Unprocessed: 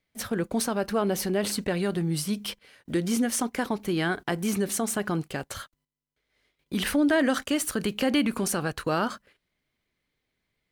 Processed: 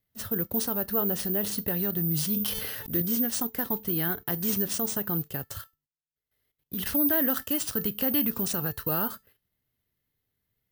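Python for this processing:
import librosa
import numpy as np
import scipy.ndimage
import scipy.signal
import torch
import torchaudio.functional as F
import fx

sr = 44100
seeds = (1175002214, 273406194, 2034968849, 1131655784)

y = fx.high_shelf(x, sr, hz=5100.0, db=6.0, at=(4.27, 4.73))
y = fx.level_steps(y, sr, step_db=15, at=(5.61, 6.86))
y = fx.comb_fb(y, sr, f0_hz=440.0, decay_s=0.21, harmonics='all', damping=0.0, mix_pct=60)
y = (np.kron(y[::3], np.eye(3)[0]) * 3)[:len(y)]
y = fx.peak_eq(y, sr, hz=99.0, db=12.0, octaves=1.5)
y = fx.notch(y, sr, hz=2300.0, q=7.3)
y = fx.sustainer(y, sr, db_per_s=26.0, at=(2.09, 3.02))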